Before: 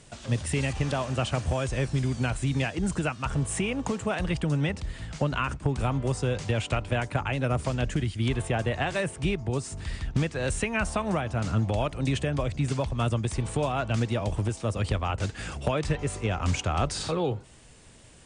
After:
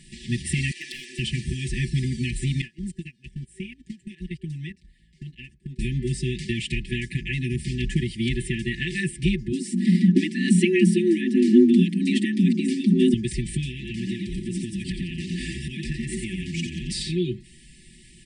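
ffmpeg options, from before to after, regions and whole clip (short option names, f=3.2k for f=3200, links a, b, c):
-filter_complex "[0:a]asettb=1/sr,asplit=3[a][b][c];[a]atrim=end=0.714[d];[b]atrim=start=0.71:end=1.19,asetpts=PTS-STARTPTS,afade=t=in:d=0.004:c=qsin,afade=t=out:st=0.476:d=0.004:c=qsin,highpass=f=400:w=0.5412,highpass=f=400:w=1.3066,volume=27dB,asoftclip=hard,volume=-27dB[e];[c]atrim=start=1.186[f];[d][e]acrossfade=d=0.004:c1=hsin:c2=qsin[g];[g][f]acrossfade=d=0.004:c1=qsin:c2=hsin,asettb=1/sr,asplit=3[h][i][j];[h]atrim=end=2.614[k];[i]atrim=start=2.61:end=5.79,asetpts=PTS-STARTPTS,afade=t=in:d=0.004:c=qsin,afade=t=out:st=3.176:d=0.004:c=qsin,agate=range=-24dB:threshold=-27dB:ratio=16:release=100:detection=peak,acompressor=threshold=-33dB:ratio=10:attack=3.2:release=140:knee=1:detection=peak[l];[j]atrim=start=5.786[m];[k][l]acrossfade=d=0.004:c1=hsin:c2=qsin[n];[n][m]acrossfade=d=0.004:c1=qsin:c2=hsin,asettb=1/sr,asplit=3[o][p][q];[o]atrim=end=9.524[r];[p]atrim=start=9.52:end=13.14,asetpts=PTS-STARTPTS,afade=t=in:d=0.004:c=qsin,afade=t=out:st=3.616:d=0.004:c=qsin,lowshelf=f=380:g=8.5,afreqshift=140[s];[q]atrim=start=13.136[t];[r][s]acrossfade=d=0.004:c1=hsin:c2=qsin[u];[u][t]acrossfade=d=0.004:c1=qsin:c2=hsin,asettb=1/sr,asplit=3[v][w][x];[v]atrim=end=13.704[y];[w]atrim=start=13.7:end=16.92,asetpts=PTS-STARTPTS,afade=t=in:d=0.004:c=qsin,afade=t=out:st=3.216:d=0.004:c=qsin,asplit=8[z][aa][ab][ac][ad][ae][af][ag];[aa]adelay=88,afreqshift=78,volume=-5.5dB[ah];[ab]adelay=176,afreqshift=156,volume=-11.2dB[ai];[ac]adelay=264,afreqshift=234,volume=-16.9dB[aj];[ad]adelay=352,afreqshift=312,volume=-22.5dB[ak];[ae]adelay=440,afreqshift=390,volume=-28.2dB[al];[af]adelay=528,afreqshift=468,volume=-33.9dB[am];[ag]adelay=616,afreqshift=546,volume=-39.6dB[an];[z][ah][ai][aj][ak][al][am][an]amix=inputs=8:normalize=0,atrim=end_sample=142002,acompressor=threshold=-27dB:ratio=10:attack=3.2:release=140:knee=1:detection=peak[ao];[x]atrim=start=16.916[ap];[y][ao]acrossfade=d=0.004:c1=hsin:c2=qsin[aq];[aq][ap]acrossfade=d=0.004:c1=qsin:c2=hsin,aecho=1:1:5.2:0.97,afftfilt=real='re*(1-between(b*sr/4096,380,1700))':imag='im*(1-between(b*sr/4096,380,1700))':win_size=4096:overlap=0.75,equalizer=f=6.6k:t=o:w=0.25:g=-9.5,volume=1.5dB"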